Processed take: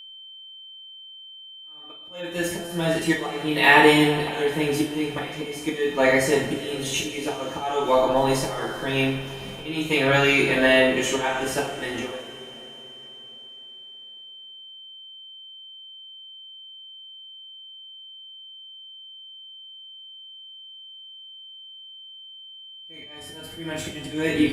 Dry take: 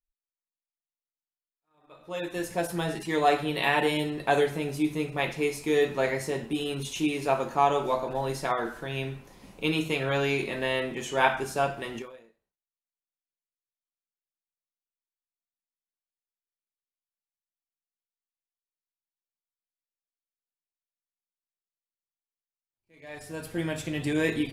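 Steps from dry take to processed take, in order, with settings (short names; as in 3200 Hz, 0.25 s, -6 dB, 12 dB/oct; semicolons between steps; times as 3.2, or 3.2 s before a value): auto swell 0.46 s; two-slope reverb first 0.38 s, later 4 s, from -19 dB, DRR -4.5 dB; whine 3100 Hz -46 dBFS; gain +5.5 dB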